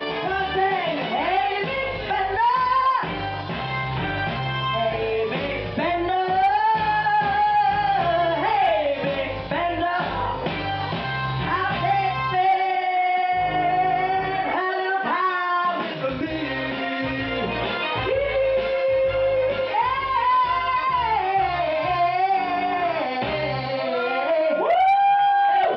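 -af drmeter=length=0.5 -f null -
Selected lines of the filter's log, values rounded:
Channel 1: DR: 3.3
Overall DR: 3.3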